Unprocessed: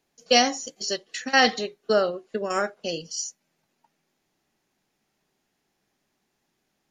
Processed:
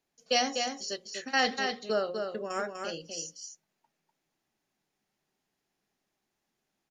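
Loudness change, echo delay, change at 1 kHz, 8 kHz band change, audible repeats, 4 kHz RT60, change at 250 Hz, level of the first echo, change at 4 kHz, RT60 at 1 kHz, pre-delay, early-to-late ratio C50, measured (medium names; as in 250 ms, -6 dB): -7.0 dB, 247 ms, -7.0 dB, -7.0 dB, 1, no reverb, -8.0 dB, -5.5 dB, -7.0 dB, no reverb, no reverb, no reverb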